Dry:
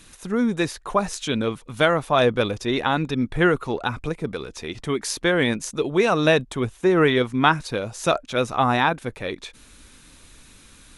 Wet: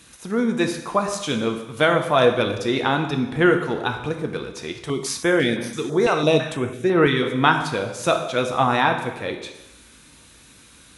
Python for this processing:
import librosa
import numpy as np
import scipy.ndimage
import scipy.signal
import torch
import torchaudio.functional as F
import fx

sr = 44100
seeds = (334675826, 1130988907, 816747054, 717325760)

y = scipy.signal.sosfilt(scipy.signal.butter(2, 79.0, 'highpass', fs=sr, output='sos'), x)
y = fx.rev_plate(y, sr, seeds[0], rt60_s=1.0, hf_ratio=0.95, predelay_ms=0, drr_db=4.5)
y = fx.filter_held_notch(y, sr, hz=6.0, low_hz=230.0, high_hz=7200.0, at=(4.73, 7.23))